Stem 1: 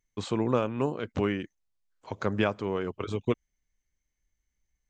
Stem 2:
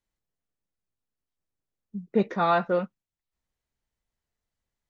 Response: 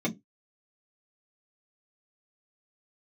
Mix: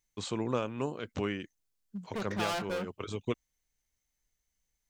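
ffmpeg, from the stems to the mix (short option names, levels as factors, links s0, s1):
-filter_complex "[0:a]volume=0.501[s0];[1:a]volume=25.1,asoftclip=hard,volume=0.0398,volume=0.562,asplit=2[s1][s2];[s2]apad=whole_len=215726[s3];[s0][s3]sidechaincompress=threshold=0.0126:ratio=8:attack=16:release=185[s4];[s4][s1]amix=inputs=2:normalize=0,highshelf=f=3200:g=10"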